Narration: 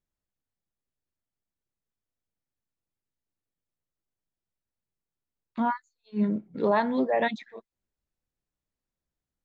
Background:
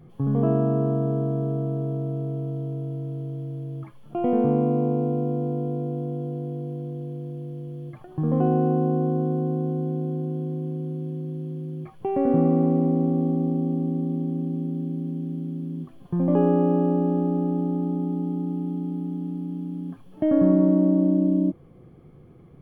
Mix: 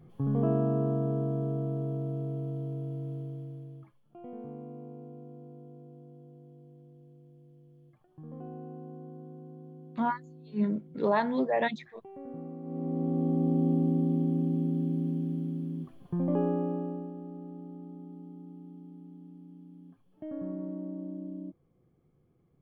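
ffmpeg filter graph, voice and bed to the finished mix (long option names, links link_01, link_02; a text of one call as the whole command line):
ffmpeg -i stem1.wav -i stem2.wav -filter_complex "[0:a]adelay=4400,volume=-2.5dB[link_01];[1:a]volume=15.5dB,afade=type=out:start_time=3.12:duration=0.92:silence=0.149624,afade=type=in:start_time=12.63:duration=1.05:silence=0.0891251,afade=type=out:start_time=15.04:duration=2.09:silence=0.125893[link_02];[link_01][link_02]amix=inputs=2:normalize=0" out.wav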